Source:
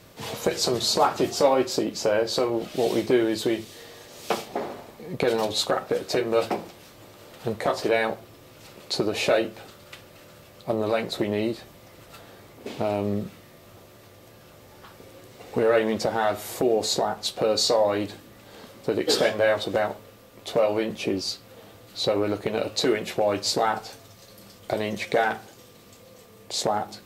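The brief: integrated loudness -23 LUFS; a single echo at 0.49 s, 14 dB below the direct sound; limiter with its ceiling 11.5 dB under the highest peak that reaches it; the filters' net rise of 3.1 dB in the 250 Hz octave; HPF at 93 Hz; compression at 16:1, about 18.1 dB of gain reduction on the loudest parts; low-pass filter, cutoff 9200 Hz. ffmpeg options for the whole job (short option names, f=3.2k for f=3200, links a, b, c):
-af "highpass=93,lowpass=9.2k,equalizer=f=250:t=o:g=4.5,acompressor=threshold=-32dB:ratio=16,alimiter=level_in=4.5dB:limit=-24dB:level=0:latency=1,volume=-4.5dB,aecho=1:1:490:0.2,volume=17dB"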